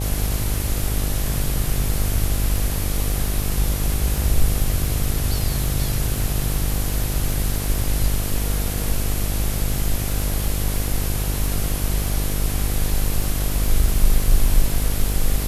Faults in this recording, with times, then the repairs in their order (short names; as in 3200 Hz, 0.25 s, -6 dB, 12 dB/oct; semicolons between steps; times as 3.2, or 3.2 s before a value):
buzz 50 Hz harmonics 16 -24 dBFS
crackle 24/s -26 dBFS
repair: de-click; de-hum 50 Hz, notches 16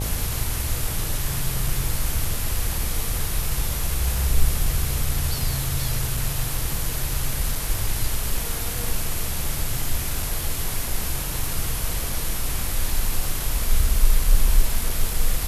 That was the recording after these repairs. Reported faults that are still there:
none